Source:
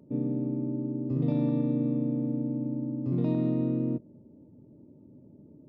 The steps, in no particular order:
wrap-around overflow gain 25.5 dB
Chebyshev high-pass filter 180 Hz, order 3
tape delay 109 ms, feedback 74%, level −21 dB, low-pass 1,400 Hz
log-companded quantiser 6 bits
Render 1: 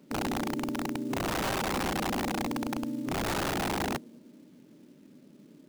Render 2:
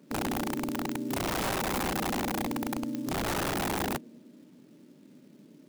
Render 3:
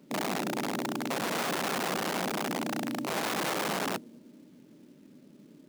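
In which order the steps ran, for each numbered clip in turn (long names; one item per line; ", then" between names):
tape delay, then Chebyshev high-pass filter, then log-companded quantiser, then wrap-around overflow
log-companded quantiser, then Chebyshev high-pass filter, then tape delay, then wrap-around overflow
tape delay, then wrap-around overflow, then Chebyshev high-pass filter, then log-companded quantiser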